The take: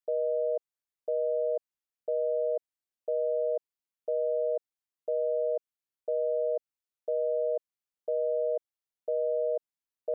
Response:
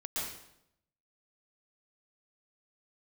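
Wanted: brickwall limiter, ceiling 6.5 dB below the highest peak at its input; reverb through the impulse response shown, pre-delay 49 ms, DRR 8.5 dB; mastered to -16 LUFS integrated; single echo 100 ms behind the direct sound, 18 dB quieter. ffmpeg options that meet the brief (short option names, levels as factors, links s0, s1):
-filter_complex "[0:a]alimiter=level_in=1.78:limit=0.0631:level=0:latency=1,volume=0.562,aecho=1:1:100:0.126,asplit=2[s0][s1];[1:a]atrim=start_sample=2205,adelay=49[s2];[s1][s2]afir=irnorm=-1:irlink=0,volume=0.251[s3];[s0][s3]amix=inputs=2:normalize=0,volume=13.3"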